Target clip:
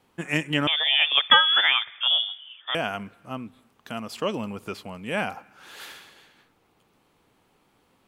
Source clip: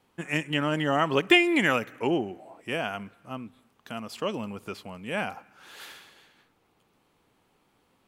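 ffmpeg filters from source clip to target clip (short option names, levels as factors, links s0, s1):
-filter_complex "[0:a]asettb=1/sr,asplit=3[s0][s1][s2];[s0]atrim=end=0.674[s3];[s1]atrim=start=0.67:end=2.75,asetpts=PTS-STARTPTS,afade=t=in:d=0.004:c=qsin,afade=t=out:st=2.076:d=0.004:c=qsin,lowpass=f=3100:t=q:w=0.5098,lowpass=f=3100:t=q:w=0.6013,lowpass=f=3100:t=q:w=0.9,lowpass=f=3100:t=q:w=2.563,afreqshift=-3700[s4];[s2]atrim=start=2.746[s5];[s3][s4]acrossfade=d=0.004:c1=hsin:c2=qsin[s6];[s6][s5]acrossfade=d=0.004:c1=qsin:c2=hsin,volume=1.41"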